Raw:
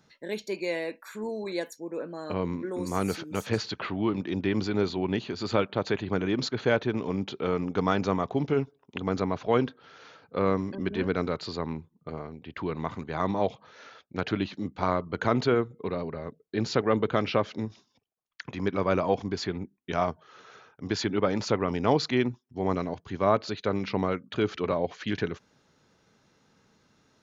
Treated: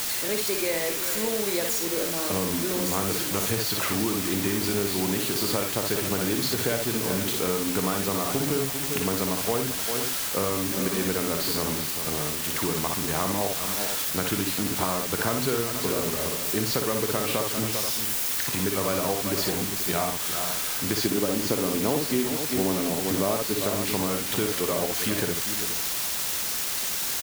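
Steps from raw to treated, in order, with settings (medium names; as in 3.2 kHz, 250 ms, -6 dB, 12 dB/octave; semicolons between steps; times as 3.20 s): zero-crossing glitches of -26 dBFS; 21.05–23.62 s: peaking EQ 300 Hz +9.5 dB 2.9 oct; multi-tap echo 53/60/395/479 ms -11/-5.5/-12.5/-16 dB; compression, threshold -28 dBFS, peak gain reduction 18 dB; word length cut 6-bit, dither triangular; trim +4.5 dB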